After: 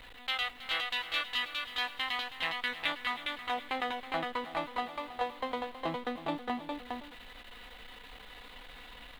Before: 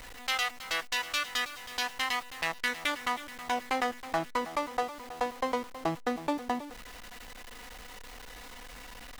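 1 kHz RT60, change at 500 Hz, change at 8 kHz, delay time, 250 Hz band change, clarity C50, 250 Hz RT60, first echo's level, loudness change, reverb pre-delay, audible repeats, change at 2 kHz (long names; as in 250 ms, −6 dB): no reverb audible, −4.0 dB, −15.0 dB, 409 ms, −4.0 dB, no reverb audible, no reverb audible, −3.0 dB, −2.5 dB, no reverb audible, 1, −2.0 dB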